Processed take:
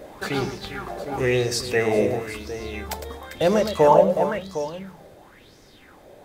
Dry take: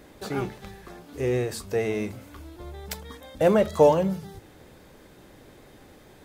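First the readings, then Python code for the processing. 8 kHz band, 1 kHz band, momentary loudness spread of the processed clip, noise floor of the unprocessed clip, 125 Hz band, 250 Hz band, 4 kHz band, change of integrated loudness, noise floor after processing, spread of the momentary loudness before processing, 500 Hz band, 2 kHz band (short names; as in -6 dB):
+7.0 dB, +7.0 dB, 17 LU, -52 dBFS, +2.0 dB, +2.0 dB, +9.5 dB, +2.0 dB, -51 dBFS, 24 LU, +3.5 dB, +8.5 dB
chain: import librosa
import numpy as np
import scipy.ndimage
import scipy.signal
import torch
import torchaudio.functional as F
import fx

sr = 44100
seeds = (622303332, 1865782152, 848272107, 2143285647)

y = fx.rider(x, sr, range_db=3, speed_s=2.0)
y = fx.echo_multitap(y, sr, ms=(107, 397, 758), db=(-9.5, -12.5, -10.0))
y = fx.bell_lfo(y, sr, hz=0.98, low_hz=560.0, high_hz=5700.0, db=15)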